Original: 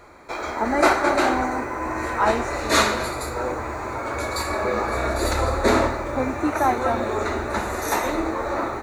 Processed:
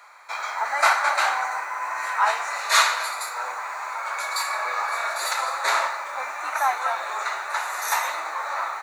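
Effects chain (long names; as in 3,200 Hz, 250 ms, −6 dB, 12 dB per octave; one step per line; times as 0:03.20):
high-pass filter 860 Hz 24 dB per octave
level +2 dB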